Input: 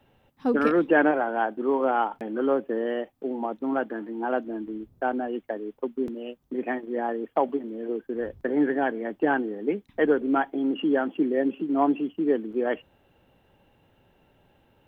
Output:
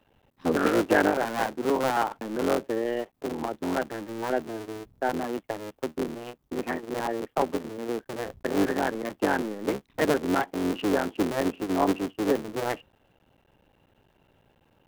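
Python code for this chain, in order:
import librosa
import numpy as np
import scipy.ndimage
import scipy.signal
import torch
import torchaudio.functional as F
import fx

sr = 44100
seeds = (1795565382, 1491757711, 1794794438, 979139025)

y = fx.cycle_switch(x, sr, every=3, mode='muted')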